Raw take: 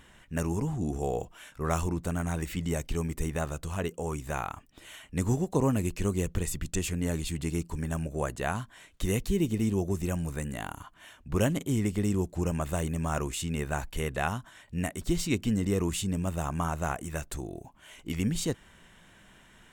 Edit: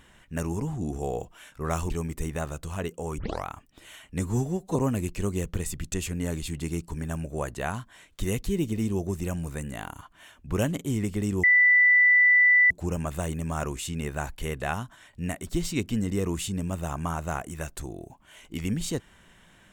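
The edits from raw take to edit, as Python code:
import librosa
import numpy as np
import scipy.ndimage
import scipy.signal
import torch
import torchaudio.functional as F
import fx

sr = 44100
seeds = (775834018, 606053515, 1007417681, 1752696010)

y = fx.edit(x, sr, fx.cut(start_s=1.9, length_s=1.0),
    fx.tape_start(start_s=4.18, length_s=0.28),
    fx.stretch_span(start_s=5.2, length_s=0.37, factor=1.5),
    fx.insert_tone(at_s=12.25, length_s=1.27, hz=1980.0, db=-15.0), tone=tone)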